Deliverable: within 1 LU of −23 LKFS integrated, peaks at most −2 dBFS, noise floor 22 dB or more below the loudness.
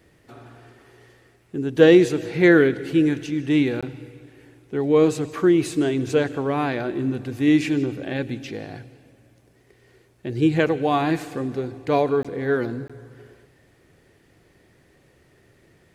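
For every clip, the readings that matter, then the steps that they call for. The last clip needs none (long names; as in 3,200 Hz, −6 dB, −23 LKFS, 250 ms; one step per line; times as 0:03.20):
number of dropouts 3; longest dropout 16 ms; integrated loudness −21.0 LKFS; sample peak −1.5 dBFS; target loudness −23.0 LKFS
→ repair the gap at 0:03.81/0:12.23/0:12.88, 16 ms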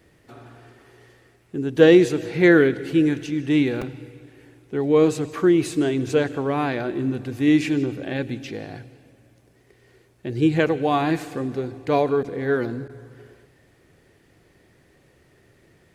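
number of dropouts 0; integrated loudness −21.0 LKFS; sample peak −1.5 dBFS; target loudness −23.0 LKFS
→ level −2 dB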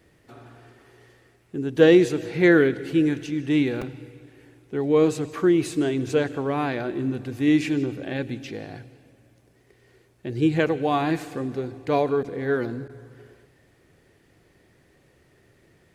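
integrated loudness −23.0 LKFS; sample peak −3.5 dBFS; background noise floor −60 dBFS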